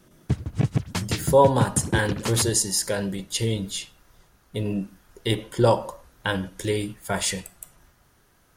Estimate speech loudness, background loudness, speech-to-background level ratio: −24.5 LKFS, −28.0 LKFS, 3.5 dB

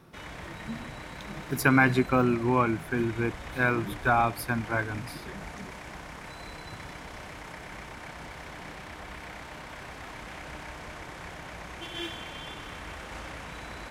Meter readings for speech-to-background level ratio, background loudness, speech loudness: 15.0 dB, −41.5 LKFS, −26.5 LKFS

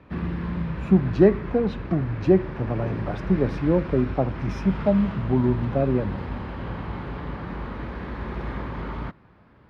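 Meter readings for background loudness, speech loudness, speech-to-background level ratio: −33.0 LKFS, −23.5 LKFS, 9.5 dB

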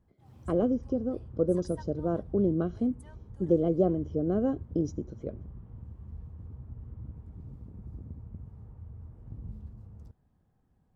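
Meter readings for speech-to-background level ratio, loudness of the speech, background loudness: 16.5 dB, −29.5 LKFS, −46.0 LKFS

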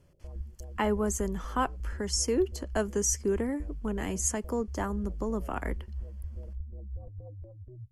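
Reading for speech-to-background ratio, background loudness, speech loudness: 11.0 dB, −42.0 LKFS, −31.0 LKFS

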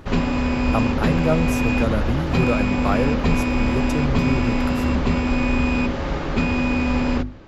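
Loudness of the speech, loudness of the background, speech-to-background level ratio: −26.0 LKFS, −21.5 LKFS, −4.5 dB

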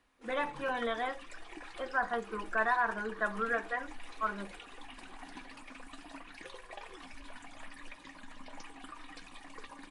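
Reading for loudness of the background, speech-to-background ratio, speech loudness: −49.5 LKFS, 15.0 dB, −34.5 LKFS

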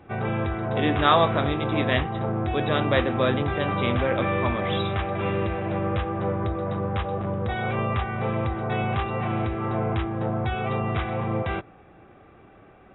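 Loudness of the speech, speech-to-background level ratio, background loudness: −25.5 LKFS, 1.5 dB, −27.0 LKFS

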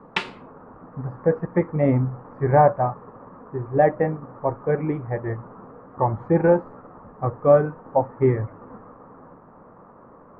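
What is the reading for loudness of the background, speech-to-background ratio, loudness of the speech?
−30.5 LKFS, 8.5 dB, −22.0 LKFS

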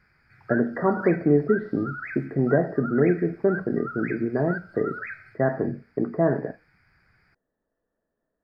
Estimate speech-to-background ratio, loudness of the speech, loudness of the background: 12.0 dB, −25.0 LKFS, −37.0 LKFS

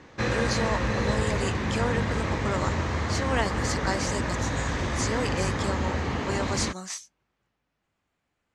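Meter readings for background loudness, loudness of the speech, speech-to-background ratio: −28.0 LKFS, −32.5 LKFS, −4.5 dB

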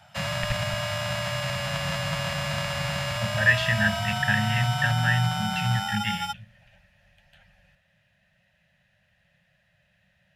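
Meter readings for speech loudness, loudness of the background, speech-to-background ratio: −26.0 LKFS, −28.5 LKFS, 2.5 dB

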